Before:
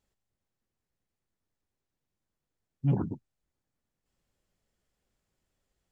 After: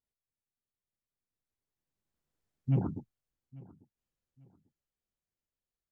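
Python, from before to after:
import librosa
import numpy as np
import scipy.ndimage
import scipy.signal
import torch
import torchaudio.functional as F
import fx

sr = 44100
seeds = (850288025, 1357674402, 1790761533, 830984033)

p1 = fx.doppler_pass(x, sr, speed_mps=25, closest_m=10.0, pass_at_s=2.45)
y = p1 + fx.echo_feedback(p1, sr, ms=844, feedback_pct=29, wet_db=-22.0, dry=0)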